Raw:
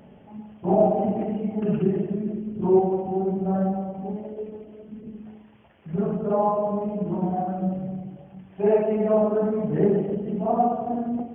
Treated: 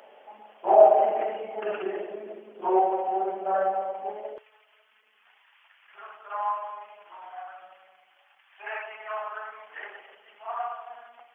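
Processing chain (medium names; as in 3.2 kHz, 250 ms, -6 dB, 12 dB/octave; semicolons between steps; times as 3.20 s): high-pass 530 Hz 24 dB/octave, from 4.38 s 1.2 kHz; dynamic bell 1.6 kHz, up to +6 dB, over -48 dBFS, Q 1.1; trim +5 dB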